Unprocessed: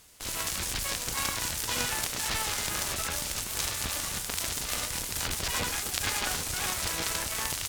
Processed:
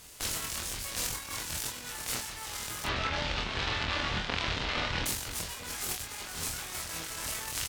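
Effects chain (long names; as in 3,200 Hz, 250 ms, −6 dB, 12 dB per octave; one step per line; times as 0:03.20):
0:02.84–0:05.06: low-pass filter 3,800 Hz 24 dB per octave
compressor whose output falls as the input rises −36 dBFS, ratio −0.5
ambience of single reflections 25 ms −4 dB, 44 ms −8.5 dB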